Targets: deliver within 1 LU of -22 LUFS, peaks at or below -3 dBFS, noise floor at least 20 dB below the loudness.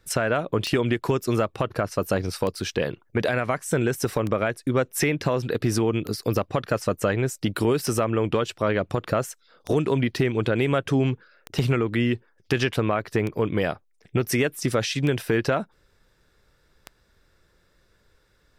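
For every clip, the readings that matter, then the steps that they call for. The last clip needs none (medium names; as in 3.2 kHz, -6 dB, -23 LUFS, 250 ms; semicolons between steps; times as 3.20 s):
clicks found 10; loudness -25.0 LUFS; peak level -12.0 dBFS; loudness target -22.0 LUFS
-> de-click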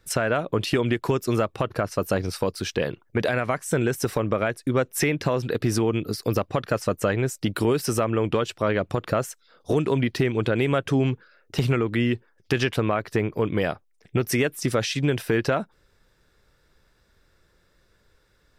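clicks found 0; loudness -25.0 LUFS; peak level -12.0 dBFS; loudness target -22.0 LUFS
-> trim +3 dB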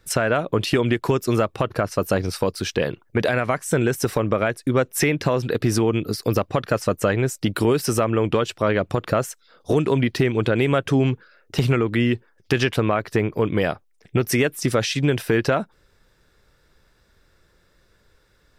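loudness -22.0 LUFS; peak level -9.0 dBFS; noise floor -61 dBFS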